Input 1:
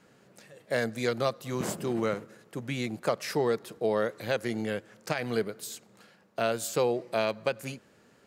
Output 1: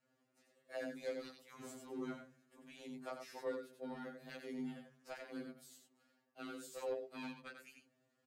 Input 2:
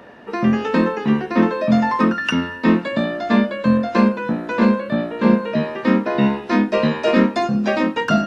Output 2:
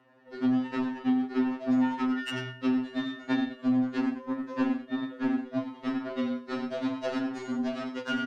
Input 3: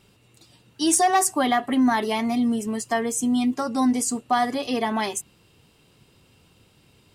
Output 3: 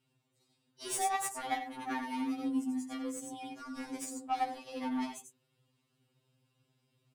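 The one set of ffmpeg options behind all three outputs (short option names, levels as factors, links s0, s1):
-filter_complex "[0:a]lowshelf=f=190:g=6,bandreject=f=50:t=h:w=6,bandreject=f=100:t=h:w=6,bandreject=f=150:t=h:w=6,bandreject=f=200:t=h:w=6,bandreject=f=250:t=h:w=6,bandreject=f=300:t=h:w=6,bandreject=f=350:t=h:w=6,bandreject=f=400:t=h:w=6,bandreject=f=450:t=h:w=6,asplit=2[s0][s1];[s1]aecho=0:1:91:0.562[s2];[s0][s2]amix=inputs=2:normalize=0,afreqshift=36,aeval=exprs='0.944*(cos(1*acos(clip(val(0)/0.944,-1,1)))-cos(1*PI/2))+0.00668*(cos(5*acos(clip(val(0)/0.944,-1,1)))-cos(5*PI/2))+0.106*(cos(7*acos(clip(val(0)/0.944,-1,1)))-cos(7*PI/2))':c=same,acompressor=threshold=0.112:ratio=6,afftfilt=real='re*2.45*eq(mod(b,6),0)':imag='im*2.45*eq(mod(b,6),0)':win_size=2048:overlap=0.75,volume=0.473"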